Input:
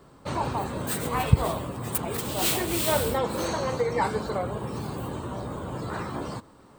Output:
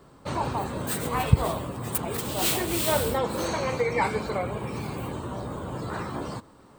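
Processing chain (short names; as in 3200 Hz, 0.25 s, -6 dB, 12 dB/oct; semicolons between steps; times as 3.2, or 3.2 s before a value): 3.53–5.12 bell 2300 Hz +12 dB 0.29 oct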